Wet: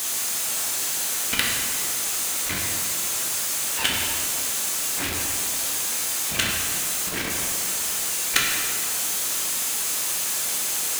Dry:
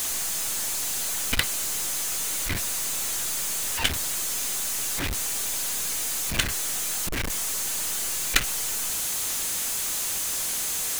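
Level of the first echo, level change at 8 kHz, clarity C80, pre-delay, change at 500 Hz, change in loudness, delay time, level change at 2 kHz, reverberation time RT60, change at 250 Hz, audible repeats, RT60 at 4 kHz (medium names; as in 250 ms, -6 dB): no echo, +2.5 dB, 2.0 dB, 11 ms, +3.5 dB, +3.0 dB, no echo, +3.5 dB, 2.1 s, +2.5 dB, no echo, 1.5 s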